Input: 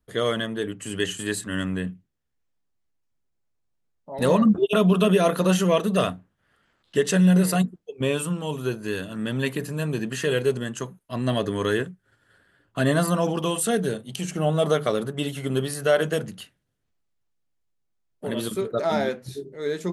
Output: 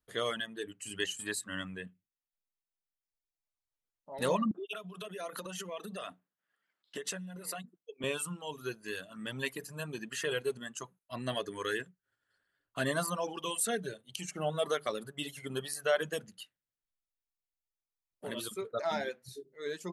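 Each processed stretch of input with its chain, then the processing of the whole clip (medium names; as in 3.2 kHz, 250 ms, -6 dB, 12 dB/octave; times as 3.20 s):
4.51–8.04 s: high-pass 150 Hz 24 dB/octave + compression 20:1, threshold -25 dBFS
whole clip: reverb removal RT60 1.7 s; bass shelf 480 Hz -10 dB; trim -5 dB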